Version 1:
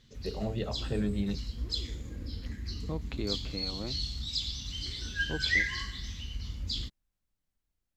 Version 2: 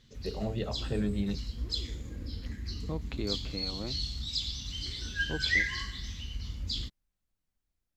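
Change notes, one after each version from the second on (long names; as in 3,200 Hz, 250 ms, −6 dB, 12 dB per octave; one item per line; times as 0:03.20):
nothing changed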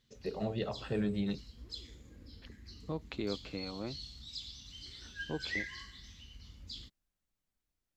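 background −10.5 dB
master: add low-shelf EQ 140 Hz −6 dB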